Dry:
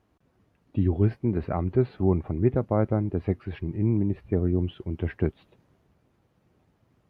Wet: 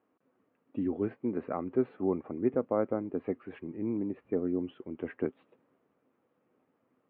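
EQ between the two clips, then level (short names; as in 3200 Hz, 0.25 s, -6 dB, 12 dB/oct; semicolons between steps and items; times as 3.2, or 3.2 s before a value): speaker cabinet 260–2800 Hz, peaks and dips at 260 Hz +8 dB, 490 Hz +7 dB, 1200 Hz +5 dB; -6.5 dB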